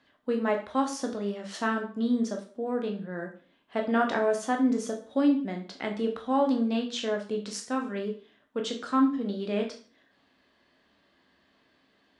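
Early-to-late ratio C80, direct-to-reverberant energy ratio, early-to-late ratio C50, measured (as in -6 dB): 14.0 dB, 2.0 dB, 9.5 dB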